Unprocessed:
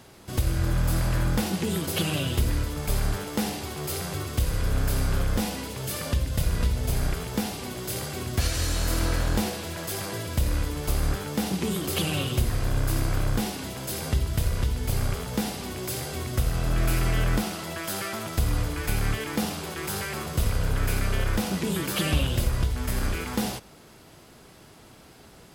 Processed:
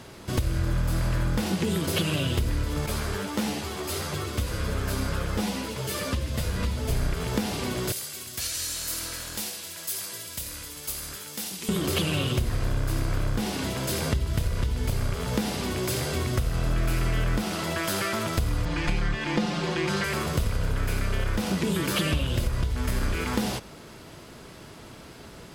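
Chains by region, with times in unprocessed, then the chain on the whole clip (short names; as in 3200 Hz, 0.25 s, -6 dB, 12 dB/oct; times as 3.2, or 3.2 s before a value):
2.86–6.91 low shelf 73 Hz -10 dB + ensemble effect
7.92–11.69 HPF 110 Hz 6 dB/oct + pre-emphasis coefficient 0.9
18.65–20.04 LPF 5200 Hz + comb 5.7 ms, depth 84%
whole clip: high shelf 9300 Hz -7.5 dB; notch 770 Hz, Q 12; compressor 4:1, threshold -29 dBFS; gain +6 dB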